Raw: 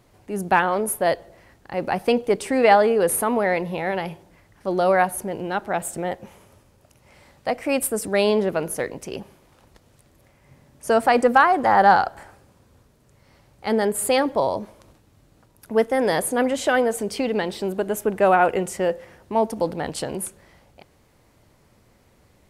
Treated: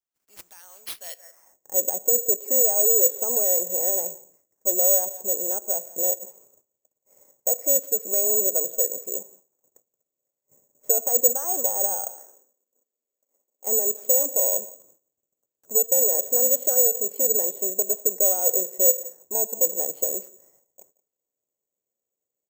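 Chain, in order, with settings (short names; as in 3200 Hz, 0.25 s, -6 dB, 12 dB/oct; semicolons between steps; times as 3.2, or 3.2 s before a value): gate -52 dBFS, range -24 dB; 12.09–13.67 elliptic high-pass 220 Hz; outdoor echo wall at 30 m, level -22 dB; in parallel at +2 dB: compressor, threshold -26 dBFS, peak gain reduction 15.5 dB; on the sum: limiter -10 dBFS, peak gain reduction 8 dB; dynamic EQ 550 Hz, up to +6 dB, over -32 dBFS, Q 1.7; band-pass sweep 7100 Hz -> 500 Hz, 0.9–1.61; careless resampling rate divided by 6×, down none, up zero stuff; gain -11 dB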